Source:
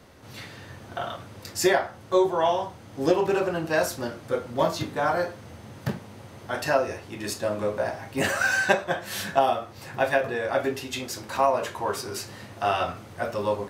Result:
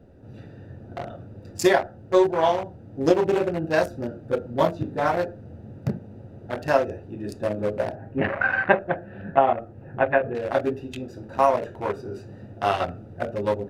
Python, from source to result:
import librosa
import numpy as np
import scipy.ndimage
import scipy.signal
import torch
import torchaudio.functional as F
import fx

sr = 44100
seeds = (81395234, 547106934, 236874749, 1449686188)

y = fx.wiener(x, sr, points=41)
y = fx.lowpass(y, sr, hz=2400.0, slope=24, at=(7.95, 10.35))
y = fx.dmg_noise_colour(y, sr, seeds[0], colour='brown', level_db=-67.0)
y = y * 10.0 ** (3.5 / 20.0)